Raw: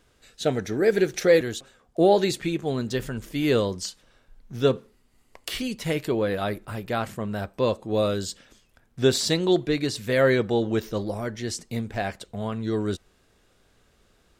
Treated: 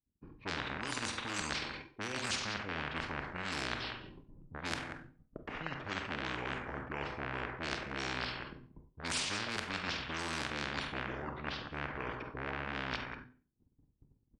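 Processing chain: rattle on loud lows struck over -31 dBFS, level -17 dBFS; band-stop 1.1 kHz, Q 12; gate -57 dBFS, range -51 dB; high-pass 94 Hz 6 dB/octave; level-controlled noise filter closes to 350 Hz, open at -17 dBFS; reverse; compression 8:1, threshold -30 dBFS, peak gain reduction 17 dB; reverse; Schroeder reverb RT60 0.35 s, combs from 31 ms, DRR 7 dB; pitch shift -8 st; on a send: delay 186 ms -23 dB; on the sum: spectrum-flattening compressor 4:1

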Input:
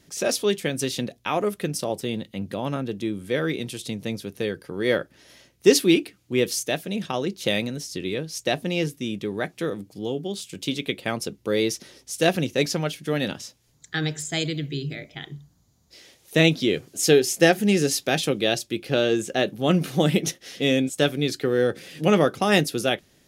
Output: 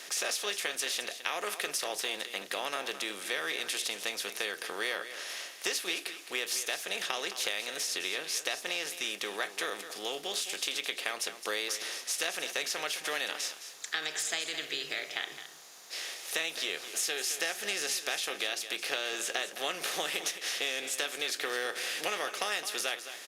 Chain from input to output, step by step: spectral levelling over time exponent 0.6; high-pass 1 kHz 12 dB/octave; compression 10:1, threshold -26 dBFS, peak gain reduction 12 dB; delay 214 ms -11.5 dB; trim -3 dB; Opus 64 kbps 48 kHz

